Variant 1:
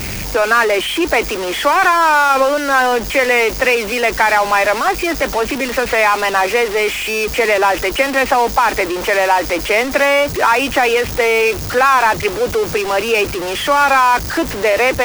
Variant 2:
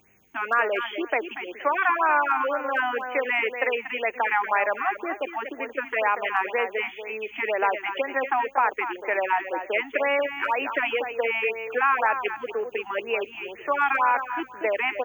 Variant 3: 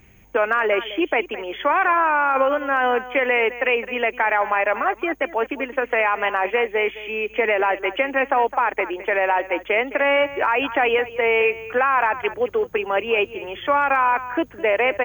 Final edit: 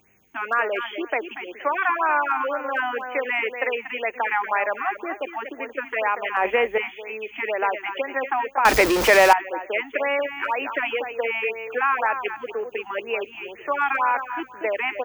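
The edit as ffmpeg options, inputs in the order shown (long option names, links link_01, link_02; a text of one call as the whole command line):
ffmpeg -i take0.wav -i take1.wav -i take2.wav -filter_complex "[1:a]asplit=3[link_01][link_02][link_03];[link_01]atrim=end=6.372[link_04];[2:a]atrim=start=6.368:end=6.782[link_05];[link_02]atrim=start=6.778:end=8.652[link_06];[0:a]atrim=start=8.648:end=9.332[link_07];[link_03]atrim=start=9.328[link_08];[link_04][link_05]acrossfade=duration=0.004:curve1=hsin:curve2=hsin[link_09];[link_09][link_06]acrossfade=duration=0.004:curve1=hsin:curve2=hsin[link_10];[link_10][link_07]acrossfade=duration=0.004:curve1=hsin:curve2=hsin[link_11];[link_11][link_08]acrossfade=duration=0.004:curve1=hsin:curve2=hsin" out.wav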